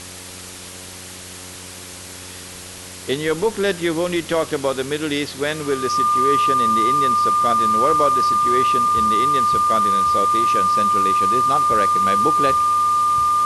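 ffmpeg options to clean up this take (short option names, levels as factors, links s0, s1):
-af "adeclick=t=4,bandreject=f=91.4:t=h:w=4,bandreject=f=182.8:t=h:w=4,bandreject=f=274.2:t=h:w=4,bandreject=f=365.6:t=h:w=4,bandreject=f=457:t=h:w=4,bandreject=f=548.4:t=h:w=4,bandreject=f=1200:w=30,afwtdn=0.02"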